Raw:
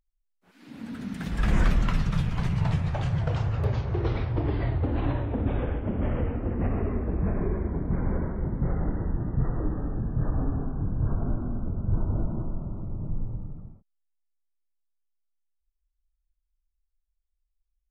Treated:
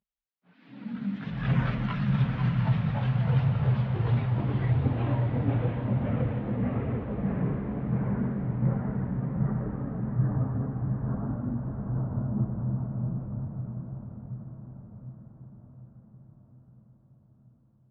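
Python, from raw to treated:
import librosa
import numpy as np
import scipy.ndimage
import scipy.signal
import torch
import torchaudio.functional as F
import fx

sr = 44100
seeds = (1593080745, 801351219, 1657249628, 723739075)

p1 = fx.cabinet(x, sr, low_hz=110.0, low_slope=12, high_hz=3700.0, hz=(130.0, 210.0, 350.0), db=(8, 7, -7))
p2 = fx.chorus_voices(p1, sr, voices=4, hz=0.25, base_ms=20, depth_ms=5.0, mix_pct=65)
y = p2 + fx.echo_diffused(p2, sr, ms=682, feedback_pct=59, wet_db=-6, dry=0)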